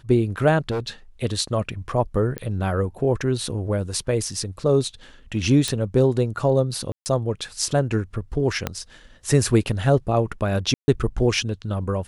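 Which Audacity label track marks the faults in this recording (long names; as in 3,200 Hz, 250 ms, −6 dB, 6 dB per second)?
0.710000	0.890000	clipping −21.5 dBFS
2.380000	2.380000	click −14 dBFS
5.680000	5.680000	click
6.920000	7.060000	drop-out 139 ms
8.670000	8.670000	click −9 dBFS
10.740000	10.880000	drop-out 140 ms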